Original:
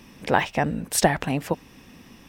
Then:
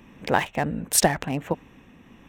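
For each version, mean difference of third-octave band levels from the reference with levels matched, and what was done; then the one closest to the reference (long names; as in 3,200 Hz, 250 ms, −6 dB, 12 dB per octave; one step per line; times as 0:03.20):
3.0 dB: adaptive Wiener filter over 9 samples
high-shelf EQ 4,000 Hz +6.5 dB
shaped tremolo triangle 1.4 Hz, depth 30%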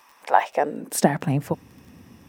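5.5 dB: parametric band 3,400 Hz −7 dB 1.7 octaves
high-pass filter sweep 1,000 Hz → 87 Hz, 0:00.19–0:01.55
surface crackle 22 per second −39 dBFS
level −1 dB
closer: first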